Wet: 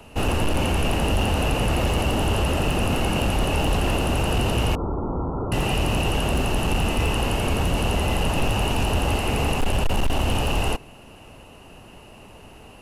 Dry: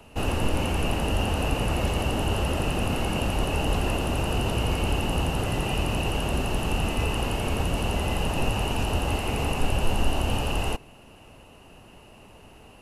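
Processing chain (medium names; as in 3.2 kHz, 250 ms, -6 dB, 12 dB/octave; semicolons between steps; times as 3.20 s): hard clipper -20.5 dBFS, distortion -14 dB; 4.75–5.52 s: rippled Chebyshev low-pass 1.4 kHz, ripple 6 dB; trim +4.5 dB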